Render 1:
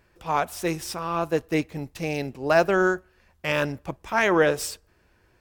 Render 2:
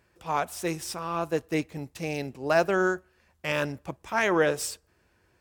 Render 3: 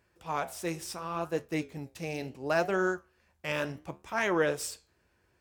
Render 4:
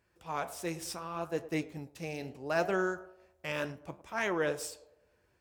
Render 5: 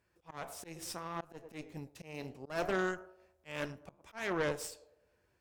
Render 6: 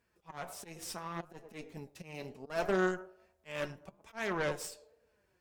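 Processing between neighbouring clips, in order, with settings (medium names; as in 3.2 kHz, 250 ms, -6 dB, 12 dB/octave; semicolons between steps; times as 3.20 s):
high-pass 55 Hz; peaking EQ 8.1 kHz +3.5 dB 0.89 oct; trim -3.5 dB
flange 0.71 Hz, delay 9.9 ms, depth 8.3 ms, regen -73%
band-passed feedback delay 105 ms, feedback 53%, band-pass 590 Hz, level -15 dB; random flutter of the level, depth 50%
Chebyshev shaper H 6 -17 dB, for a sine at -18 dBFS; slow attack 193 ms; trim -3 dB
flange 1.2 Hz, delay 4.2 ms, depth 1.5 ms, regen +42%; trim +4.5 dB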